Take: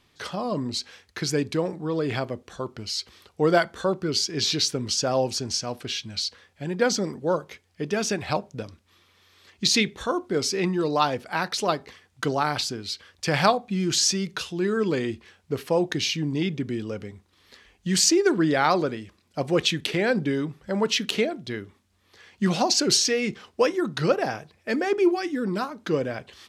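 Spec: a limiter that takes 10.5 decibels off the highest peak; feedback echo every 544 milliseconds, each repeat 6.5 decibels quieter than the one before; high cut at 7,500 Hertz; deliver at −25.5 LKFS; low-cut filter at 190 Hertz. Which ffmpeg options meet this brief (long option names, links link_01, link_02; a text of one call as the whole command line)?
ffmpeg -i in.wav -af "highpass=190,lowpass=7500,alimiter=limit=-15.5dB:level=0:latency=1,aecho=1:1:544|1088|1632|2176|2720|3264:0.473|0.222|0.105|0.0491|0.0231|0.0109,volume=1.5dB" out.wav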